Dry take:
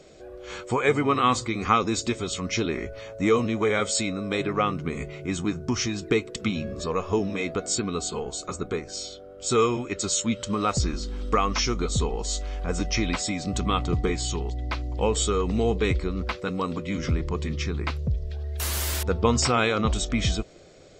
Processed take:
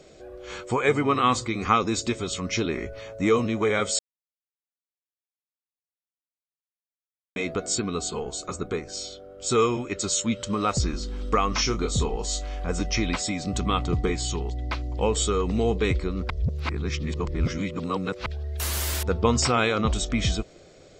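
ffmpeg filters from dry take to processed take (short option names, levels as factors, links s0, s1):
-filter_complex "[0:a]asettb=1/sr,asplit=3[s0][s1][s2];[s0]atrim=end=11.504[s3];[s1]atrim=start=11.5:end=12.67,asetpts=PTS-STARTPTS,afade=t=in:d=0.004:c=qsin,afade=t=out:st=1.166:d=0.004:c=qsin,asplit=2[s4][s5];[s5]adelay=27,volume=0.398[s6];[s4][s6]amix=inputs=2:normalize=0,atrim=end_sample=51597[s7];[s2]atrim=start=12.666[s8];[s3][s7]acrossfade=d=0.004:c1=hsin:c2=qsin[s9];[s9][s8]acrossfade=d=0.004:c1=qsin:c2=hsin,asplit=5[s10][s11][s12][s13][s14];[s10]atrim=end=3.99,asetpts=PTS-STARTPTS,afade=t=out:st=3.986:d=0.004:c=hsin[s15];[s11]atrim=start=3.99:end=7.36,asetpts=PTS-STARTPTS,volume=0[s16];[s12]atrim=start=7.36:end=16.302,asetpts=PTS-STARTPTS,afade=t=in:d=0.004:c=hsin[s17];[s13]atrim=start=16.298:end=18.262,asetpts=PTS-STARTPTS,areverse[s18];[s14]atrim=start=18.258[s19];[s15][s16][s17]concat=n=3:v=0:a=1[s20];[s20][s18]acrossfade=d=0.004:c1=hsin:c2=hsin[s21];[s21][s19]acrossfade=d=0.004:c1=hsin:c2=hsin"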